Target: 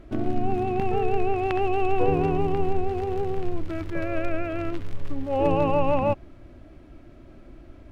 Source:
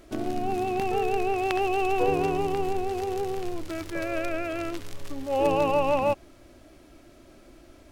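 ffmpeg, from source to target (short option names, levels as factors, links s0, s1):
-af "bass=f=250:g=9,treble=f=4000:g=-15"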